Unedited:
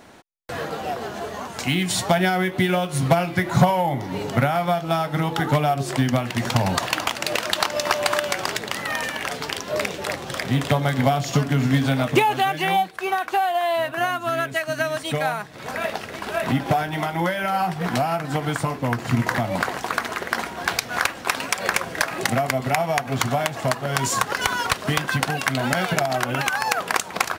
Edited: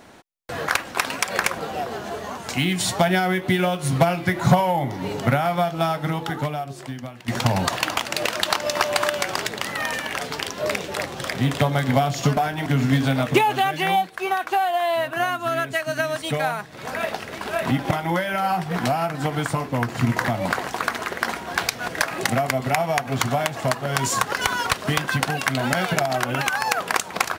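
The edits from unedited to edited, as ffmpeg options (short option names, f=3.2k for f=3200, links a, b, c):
-filter_complex "[0:a]asplit=8[a][b][c][d][e][f][g][h];[a]atrim=end=0.682[i];[b]atrim=start=20.978:end=21.882[j];[c]atrim=start=0.678:end=6.38,asetpts=PTS-STARTPTS,afade=t=out:st=4.342:d=1.36:c=qua:silence=0.188365[k];[d]atrim=start=6.38:end=11.472,asetpts=PTS-STARTPTS,afade=t=in:d=0.004:c=hsin:silence=0.188365[l];[e]atrim=start=16.718:end=17.012[m];[f]atrim=start=11.468:end=16.722[n];[g]atrim=start=17.008:end=20.982[o];[h]atrim=start=21.878[p];[i][j]acrossfade=d=0.004:c1=hsin:c2=hsin[q];[k][l]concat=n=2:v=0:a=1[r];[q][r]acrossfade=d=0.004:c1=hsin:c2=hsin[s];[s][m]acrossfade=d=0.004:c1=hsin:c2=hsin[t];[t][n]acrossfade=d=0.004:c1=hsin:c2=hsin[u];[u][o]acrossfade=d=0.004:c1=hsin:c2=hsin[v];[v][p]acrossfade=d=0.004:c1=hsin:c2=hsin"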